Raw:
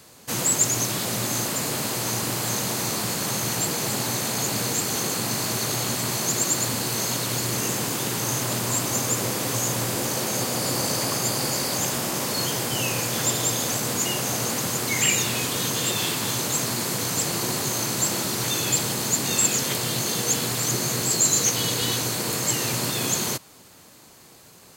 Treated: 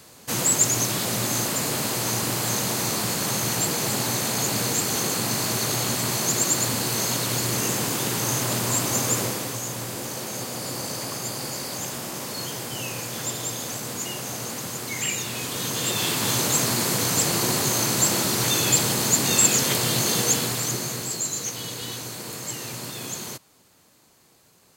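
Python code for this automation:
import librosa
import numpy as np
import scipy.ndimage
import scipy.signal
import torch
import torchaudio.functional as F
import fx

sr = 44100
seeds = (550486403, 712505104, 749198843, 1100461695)

y = fx.gain(x, sr, db=fx.line((9.18, 1.0), (9.59, -6.0), (15.23, -6.0), (16.34, 3.0), (20.2, 3.0), (21.3, -8.5)))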